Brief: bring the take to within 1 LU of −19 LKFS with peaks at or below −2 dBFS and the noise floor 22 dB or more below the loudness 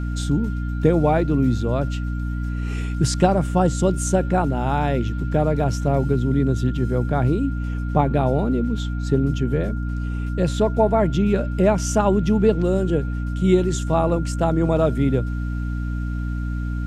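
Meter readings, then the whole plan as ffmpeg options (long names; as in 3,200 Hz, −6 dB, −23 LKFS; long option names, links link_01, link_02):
mains hum 60 Hz; hum harmonics up to 300 Hz; level of the hum −22 dBFS; interfering tone 1,400 Hz; level of the tone −39 dBFS; integrated loudness −21.5 LKFS; sample peak −2.5 dBFS; target loudness −19.0 LKFS
→ -af "bandreject=frequency=60:width_type=h:width=4,bandreject=frequency=120:width_type=h:width=4,bandreject=frequency=180:width_type=h:width=4,bandreject=frequency=240:width_type=h:width=4,bandreject=frequency=300:width_type=h:width=4"
-af "bandreject=frequency=1400:width=30"
-af "volume=2.5dB,alimiter=limit=-2dB:level=0:latency=1"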